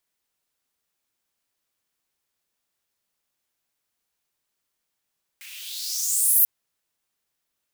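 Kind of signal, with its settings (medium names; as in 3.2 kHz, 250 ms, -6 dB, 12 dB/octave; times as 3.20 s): swept filtered noise white, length 1.04 s highpass, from 2.1 kHz, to 13 kHz, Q 4.1, exponential, gain ramp +26 dB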